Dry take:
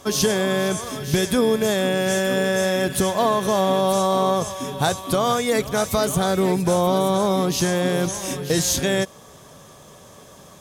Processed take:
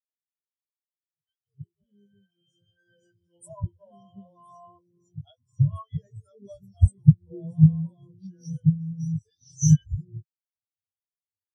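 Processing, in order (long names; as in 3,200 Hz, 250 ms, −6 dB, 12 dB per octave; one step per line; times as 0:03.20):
fade in at the beginning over 3.26 s
drawn EQ curve 130 Hz 0 dB, 250 Hz −10 dB, 1,300 Hz −8 dB, 4,200 Hz +2 dB, 6,600 Hz +7 dB
wrong playback speed 48 kHz file played as 44.1 kHz
parametric band 87 Hz +8.5 dB 1.1 octaves
double-tracking delay 20 ms −5.5 dB
three-band delay without the direct sound mids, highs, lows 200/370 ms, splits 450/4,900 Hz
every bin expanded away from the loudest bin 4 to 1
level +2 dB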